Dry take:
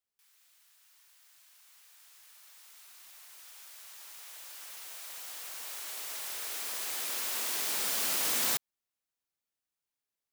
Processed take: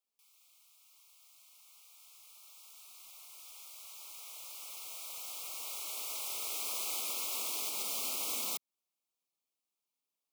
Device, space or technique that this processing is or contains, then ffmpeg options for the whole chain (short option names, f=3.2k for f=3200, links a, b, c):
PA system with an anti-feedback notch: -filter_complex "[0:a]asettb=1/sr,asplit=3[a][b][c];[a]atrim=end=2.314[d];[b]atrim=start=2.31:end=2.94,asetpts=PTS-STARTPTS,afade=t=in:d=0.004:c=qsin,afade=t=out:st=0.626:d=0.004:c=qsin,bandreject=f=2k:w=6.7[e];[c]atrim=start=2.936[f];[d][e]acrossfade=d=0.004:c1=hsin:c2=qsin[g];[g][f]acrossfade=d=0.004:c1=qsin:c2=hsin,highpass=f=180:w=0.5412,highpass=f=180:w=1.3066,asuperstop=centerf=1700:order=12:qfactor=2.1,alimiter=level_in=2dB:limit=-24dB:level=0:latency=1:release=213,volume=-2dB"